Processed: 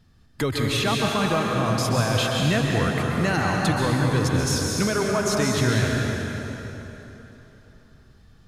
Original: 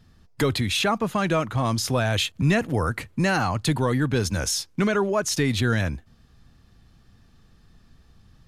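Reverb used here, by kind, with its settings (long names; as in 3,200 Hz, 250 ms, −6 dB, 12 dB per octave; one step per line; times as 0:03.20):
dense smooth reverb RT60 3.5 s, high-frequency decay 0.8×, pre-delay 115 ms, DRR −1.5 dB
level −2.5 dB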